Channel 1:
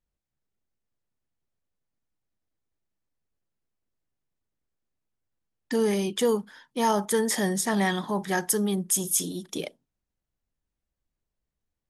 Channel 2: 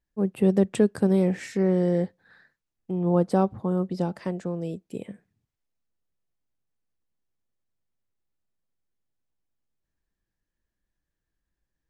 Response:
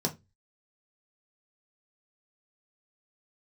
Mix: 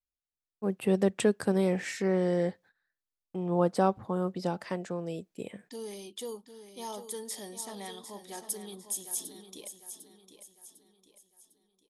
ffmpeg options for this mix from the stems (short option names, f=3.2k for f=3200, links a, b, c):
-filter_complex "[0:a]equalizer=f=160:t=o:w=0.67:g=-12,equalizer=f=1.6k:t=o:w=0.67:g=-10,equalizer=f=4k:t=o:w=0.67:g=7,equalizer=f=10k:t=o:w=0.67:g=7,volume=-15dB,asplit=2[a][b];[b]volume=-10dB[c];[1:a]agate=range=-26dB:threshold=-49dB:ratio=16:detection=peak,lowshelf=f=470:g=-11,adelay=450,volume=2.5dB[d];[c]aecho=0:1:752|1504|2256|3008|3760|4512:1|0.41|0.168|0.0689|0.0283|0.0116[e];[a][d][e]amix=inputs=3:normalize=0"